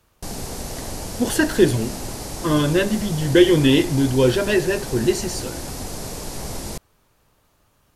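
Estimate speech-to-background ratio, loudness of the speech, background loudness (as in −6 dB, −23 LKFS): 11.5 dB, −19.5 LKFS, −31.0 LKFS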